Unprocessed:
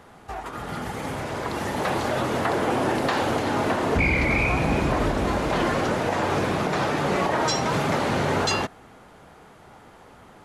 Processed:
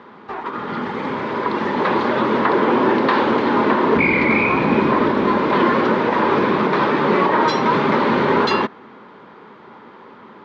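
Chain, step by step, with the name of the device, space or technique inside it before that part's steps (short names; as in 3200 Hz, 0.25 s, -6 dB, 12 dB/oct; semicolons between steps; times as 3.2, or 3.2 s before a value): kitchen radio (speaker cabinet 210–3800 Hz, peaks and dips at 220 Hz +7 dB, 390 Hz +5 dB, 710 Hz -10 dB, 1000 Hz +7 dB, 2800 Hz -4 dB); gain +6.5 dB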